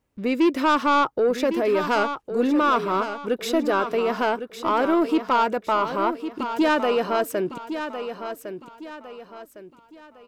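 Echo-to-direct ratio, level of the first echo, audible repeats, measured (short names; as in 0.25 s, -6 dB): -9.0 dB, -9.5 dB, 3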